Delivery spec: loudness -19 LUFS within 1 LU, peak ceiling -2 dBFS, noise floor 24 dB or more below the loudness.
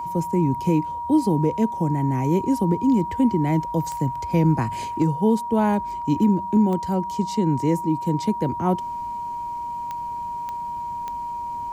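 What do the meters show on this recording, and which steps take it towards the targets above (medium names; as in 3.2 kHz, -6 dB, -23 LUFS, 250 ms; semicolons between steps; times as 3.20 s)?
clicks found 5; steady tone 950 Hz; tone level -27 dBFS; loudness -23.0 LUFS; peak level -9.5 dBFS; loudness target -19.0 LUFS
-> de-click; band-stop 950 Hz, Q 30; trim +4 dB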